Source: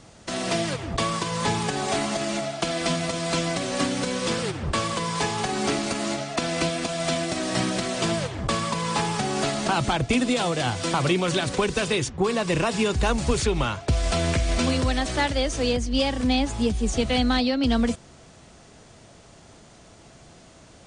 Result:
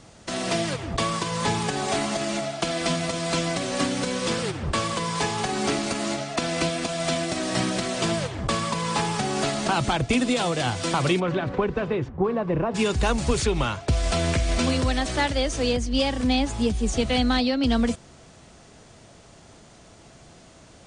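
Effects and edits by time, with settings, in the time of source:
11.19–12.74 LPF 1800 Hz -> 1000 Hz

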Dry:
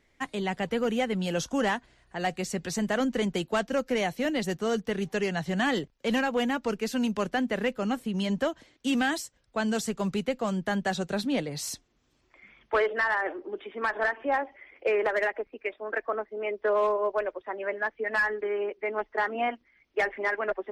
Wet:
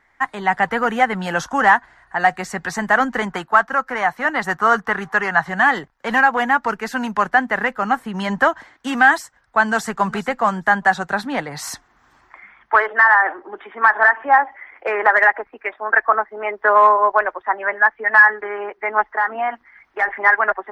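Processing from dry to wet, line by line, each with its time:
3.3–5.49 bell 1200 Hz +8 dB 1.1 oct
9.65–10.07 echo throw 0.41 s, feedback 15%, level -17 dB
19.1–20.08 compressor 2.5:1, threshold -35 dBFS
whole clip: band shelf 1200 Hz +15.5 dB; AGC; gain -1 dB

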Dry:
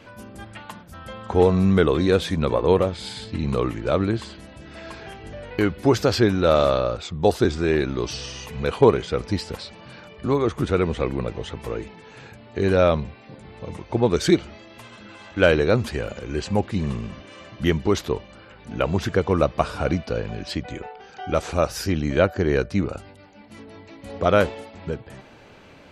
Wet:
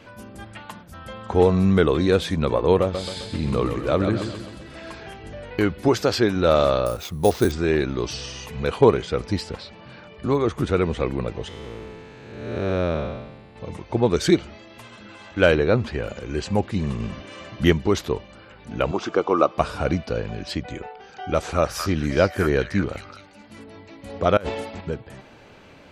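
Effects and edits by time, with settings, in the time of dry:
2.81–4.91 feedback echo 0.131 s, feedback 49%, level -7 dB
5.88–6.36 low shelf 120 Hz -10.5 dB
6.86–7.52 sample-rate reducer 10000 Hz
9.49–10.13 air absorption 92 m
11.48–13.56 time blur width 0.432 s
15.55–16.04 Bessel low-pass 3600 Hz
17–17.73 gain +3.5 dB
18.91–19.58 speaker cabinet 300–6700 Hz, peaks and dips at 330 Hz +6 dB, 780 Hz +4 dB, 1200 Hz +9 dB, 1800 Hz -9 dB, 4200 Hz -4 dB
21.23–23.64 delay with a stepping band-pass 0.21 s, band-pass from 1500 Hz, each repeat 1.4 oct, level -2.5 dB
24.37–24.81 negative-ratio compressor -30 dBFS

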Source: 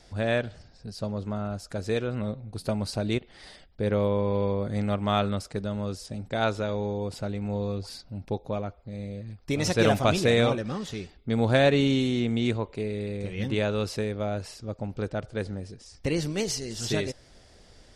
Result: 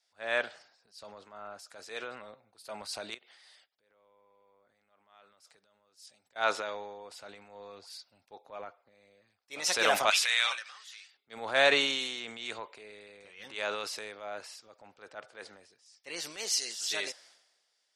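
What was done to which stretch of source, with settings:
3.14–6.36 compressor 16:1, threshold -39 dBFS
10.1–11.14 Chebyshev high-pass 1700 Hz
whole clip: HPF 920 Hz 12 dB/oct; transient shaper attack -5 dB, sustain +6 dB; three-band expander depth 70%; gain -1.5 dB

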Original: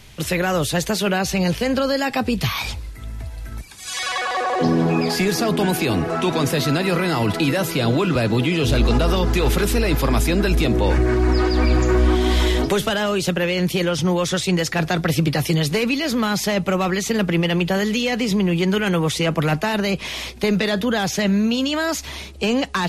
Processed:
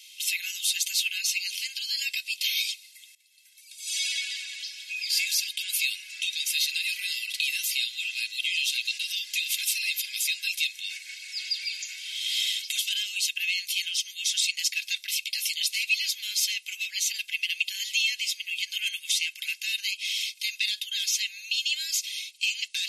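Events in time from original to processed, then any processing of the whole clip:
3.15–4.2 fade in, from -18 dB
whole clip: steep high-pass 2400 Hz 48 dB/oct; comb 1.9 ms, depth 61%

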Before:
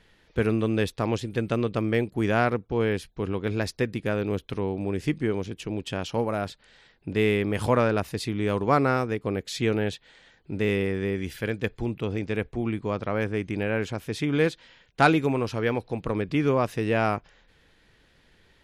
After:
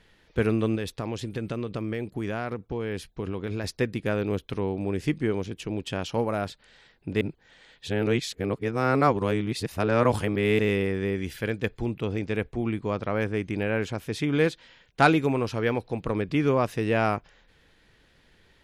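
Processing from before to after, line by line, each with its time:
0.75–3.64 compressor, threshold -26 dBFS
7.21–10.59 reverse

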